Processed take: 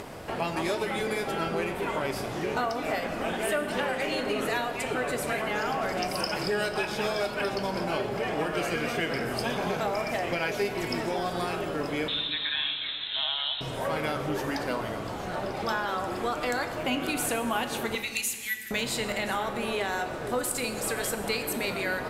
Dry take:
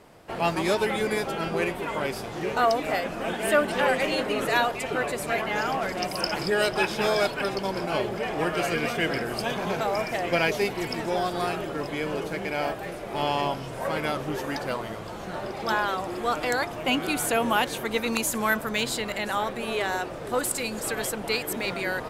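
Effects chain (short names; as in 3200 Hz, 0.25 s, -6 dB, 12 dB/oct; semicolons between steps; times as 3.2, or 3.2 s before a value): 12.08–13.61 inverted band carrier 4000 Hz; 17.95–18.71 Chebyshev high-pass 1900 Hz, order 6; compressor, threshold -26 dBFS, peak gain reduction 10 dB; reverb RT60 1.7 s, pre-delay 6 ms, DRR 6.5 dB; upward compressor, threshold -31 dBFS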